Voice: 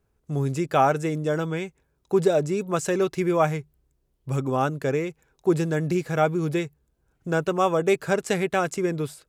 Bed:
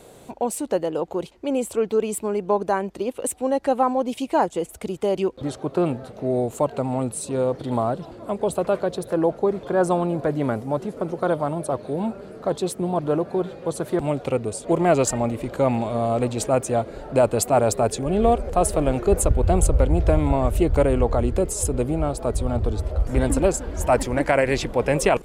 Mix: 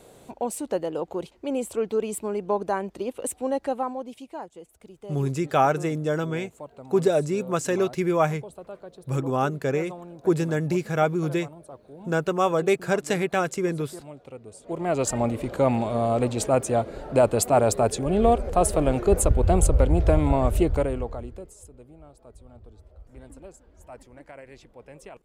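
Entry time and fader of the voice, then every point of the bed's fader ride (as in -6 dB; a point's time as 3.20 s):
4.80 s, -0.5 dB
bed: 3.55 s -4 dB
4.48 s -18.5 dB
14.39 s -18.5 dB
15.20 s -1 dB
20.60 s -1 dB
21.71 s -25.5 dB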